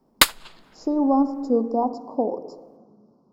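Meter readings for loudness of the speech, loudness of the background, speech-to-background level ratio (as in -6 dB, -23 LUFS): -24.0 LUFS, -19.0 LUFS, -5.0 dB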